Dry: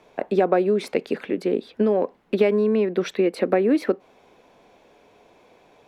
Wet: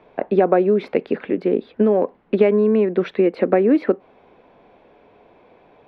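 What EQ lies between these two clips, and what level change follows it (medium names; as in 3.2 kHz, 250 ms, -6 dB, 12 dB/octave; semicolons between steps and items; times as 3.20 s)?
distance through air 360 m; +4.5 dB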